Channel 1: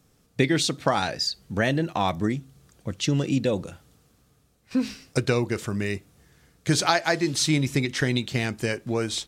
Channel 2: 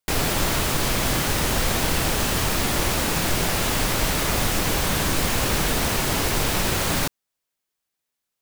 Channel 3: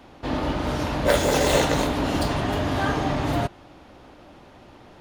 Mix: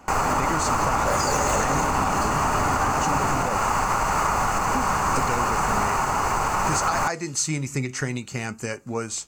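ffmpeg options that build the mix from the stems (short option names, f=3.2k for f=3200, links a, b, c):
-filter_complex "[0:a]flanger=delay=3.3:depth=4.7:regen=82:speed=0.57:shape=triangular,volume=1dB[a];[1:a]adynamicequalizer=threshold=0.00562:dfrequency=510:dqfactor=4.9:tfrequency=510:tqfactor=4.9:attack=5:release=100:ratio=0.375:range=1.5:mode=cutabove:tftype=bell,lowpass=f=3.3k:p=1,equalizer=f=930:w=0.93:g=9.5,volume=-3.5dB[b];[2:a]volume=-1.5dB[c];[a][b][c]amix=inputs=3:normalize=0,superequalizer=6b=0.708:9b=1.78:10b=2.24:13b=0.316:15b=2.82,alimiter=limit=-12.5dB:level=0:latency=1:release=90"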